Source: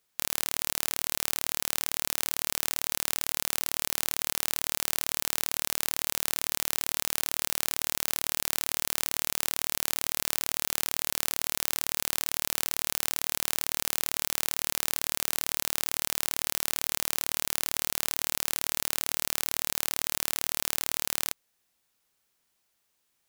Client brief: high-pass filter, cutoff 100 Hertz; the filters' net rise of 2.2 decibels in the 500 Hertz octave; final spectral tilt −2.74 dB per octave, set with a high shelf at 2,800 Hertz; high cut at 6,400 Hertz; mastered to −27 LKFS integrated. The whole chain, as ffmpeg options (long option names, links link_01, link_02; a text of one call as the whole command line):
ffmpeg -i in.wav -af "highpass=100,lowpass=6400,equalizer=frequency=500:width_type=o:gain=3,highshelf=frequency=2800:gain=-4.5,volume=9.5dB" out.wav